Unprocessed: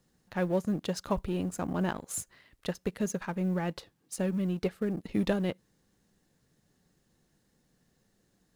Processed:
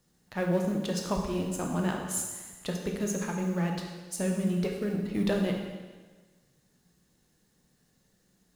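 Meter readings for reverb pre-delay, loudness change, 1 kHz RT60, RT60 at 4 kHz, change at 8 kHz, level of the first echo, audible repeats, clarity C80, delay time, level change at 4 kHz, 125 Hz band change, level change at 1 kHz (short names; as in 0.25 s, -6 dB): 6 ms, +1.5 dB, 1.4 s, 1.3 s, +5.0 dB, none, none, 5.5 dB, none, +3.5 dB, +2.0 dB, +1.0 dB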